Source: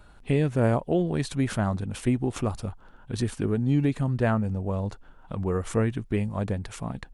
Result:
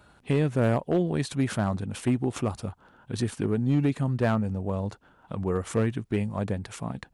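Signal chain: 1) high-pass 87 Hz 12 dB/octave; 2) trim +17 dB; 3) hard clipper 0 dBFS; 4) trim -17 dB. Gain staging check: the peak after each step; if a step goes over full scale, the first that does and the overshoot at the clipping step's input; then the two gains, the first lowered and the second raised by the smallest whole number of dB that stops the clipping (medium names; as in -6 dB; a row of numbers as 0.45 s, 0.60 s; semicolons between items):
-12.0 dBFS, +5.0 dBFS, 0.0 dBFS, -17.0 dBFS; step 2, 5.0 dB; step 2 +12 dB, step 4 -12 dB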